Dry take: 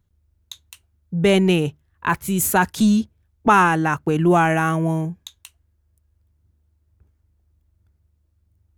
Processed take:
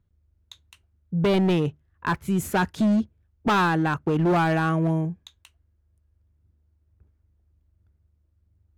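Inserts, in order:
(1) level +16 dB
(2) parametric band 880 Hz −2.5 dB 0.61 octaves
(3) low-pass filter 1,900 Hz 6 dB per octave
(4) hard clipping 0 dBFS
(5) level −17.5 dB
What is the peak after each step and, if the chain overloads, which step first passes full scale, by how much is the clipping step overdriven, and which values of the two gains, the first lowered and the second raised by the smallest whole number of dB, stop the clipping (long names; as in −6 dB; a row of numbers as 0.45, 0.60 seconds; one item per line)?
+11.5, +11.0, +9.5, 0.0, −17.5 dBFS
step 1, 9.5 dB
step 1 +6 dB, step 5 −7.5 dB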